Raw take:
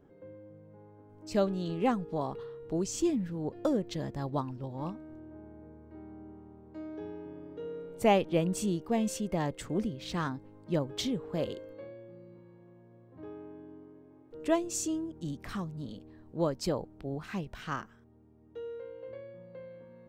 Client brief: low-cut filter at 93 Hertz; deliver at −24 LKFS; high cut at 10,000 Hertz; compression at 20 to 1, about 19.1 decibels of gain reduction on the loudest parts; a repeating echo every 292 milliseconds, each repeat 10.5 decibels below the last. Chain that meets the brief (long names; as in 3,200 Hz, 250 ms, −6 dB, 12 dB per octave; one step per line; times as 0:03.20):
high-pass filter 93 Hz
low-pass filter 10,000 Hz
downward compressor 20 to 1, threshold −38 dBFS
repeating echo 292 ms, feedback 30%, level −10.5 dB
level +20.5 dB